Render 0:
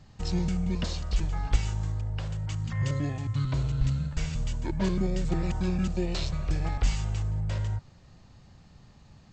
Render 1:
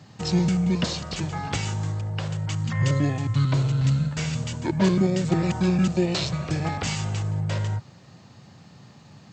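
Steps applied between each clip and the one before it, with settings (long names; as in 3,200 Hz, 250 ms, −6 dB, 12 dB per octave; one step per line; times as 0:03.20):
high-pass filter 110 Hz 24 dB per octave
level +8 dB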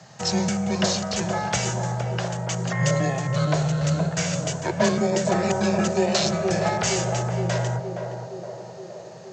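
graphic EQ with 15 bands 250 Hz −11 dB, 630 Hz +11 dB, 1,600 Hz +6 dB, 6,300 Hz +10 dB
frequency shifter +18 Hz
feedback echo with a band-pass in the loop 468 ms, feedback 73%, band-pass 440 Hz, level −3 dB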